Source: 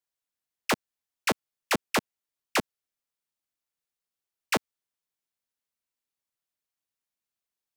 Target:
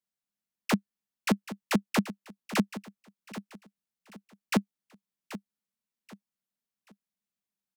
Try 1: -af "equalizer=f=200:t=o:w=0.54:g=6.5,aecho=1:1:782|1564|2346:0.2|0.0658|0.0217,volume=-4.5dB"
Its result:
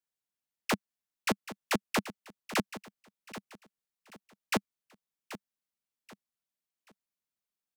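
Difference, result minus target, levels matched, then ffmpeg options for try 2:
250 Hz band -4.0 dB
-af "equalizer=f=200:t=o:w=0.54:g=17.5,aecho=1:1:782|1564|2346:0.2|0.0658|0.0217,volume=-4.5dB"

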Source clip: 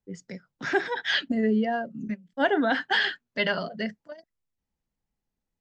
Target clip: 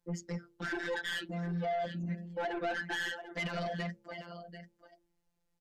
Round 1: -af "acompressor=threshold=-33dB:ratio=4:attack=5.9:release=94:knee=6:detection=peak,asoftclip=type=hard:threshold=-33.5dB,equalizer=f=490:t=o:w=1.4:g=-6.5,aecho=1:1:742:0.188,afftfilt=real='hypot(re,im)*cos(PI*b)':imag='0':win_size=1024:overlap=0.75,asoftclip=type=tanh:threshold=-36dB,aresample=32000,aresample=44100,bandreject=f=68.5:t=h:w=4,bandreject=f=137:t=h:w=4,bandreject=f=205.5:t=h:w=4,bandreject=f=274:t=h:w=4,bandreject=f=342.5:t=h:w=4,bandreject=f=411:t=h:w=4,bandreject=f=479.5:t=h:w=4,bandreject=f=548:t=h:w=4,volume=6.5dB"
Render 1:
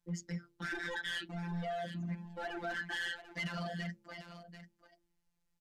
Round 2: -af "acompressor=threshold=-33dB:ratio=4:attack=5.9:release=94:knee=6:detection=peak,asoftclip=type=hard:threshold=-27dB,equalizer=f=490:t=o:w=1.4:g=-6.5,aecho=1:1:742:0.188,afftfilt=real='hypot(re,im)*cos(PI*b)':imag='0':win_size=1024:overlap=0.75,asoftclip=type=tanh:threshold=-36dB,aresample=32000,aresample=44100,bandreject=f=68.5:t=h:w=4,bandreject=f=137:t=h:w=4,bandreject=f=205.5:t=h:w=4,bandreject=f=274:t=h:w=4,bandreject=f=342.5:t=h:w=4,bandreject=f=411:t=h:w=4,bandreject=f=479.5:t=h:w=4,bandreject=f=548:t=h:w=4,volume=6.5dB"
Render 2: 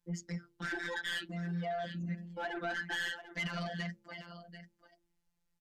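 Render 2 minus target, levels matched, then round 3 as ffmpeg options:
500 Hz band -3.5 dB
-af "acompressor=threshold=-33dB:ratio=4:attack=5.9:release=94:knee=6:detection=peak,asoftclip=type=hard:threshold=-27dB,equalizer=f=490:t=o:w=1.4:g=2.5,aecho=1:1:742:0.188,afftfilt=real='hypot(re,im)*cos(PI*b)':imag='0':win_size=1024:overlap=0.75,asoftclip=type=tanh:threshold=-36dB,aresample=32000,aresample=44100,bandreject=f=68.5:t=h:w=4,bandreject=f=137:t=h:w=4,bandreject=f=205.5:t=h:w=4,bandreject=f=274:t=h:w=4,bandreject=f=342.5:t=h:w=4,bandreject=f=411:t=h:w=4,bandreject=f=479.5:t=h:w=4,bandreject=f=548:t=h:w=4,volume=6.5dB"

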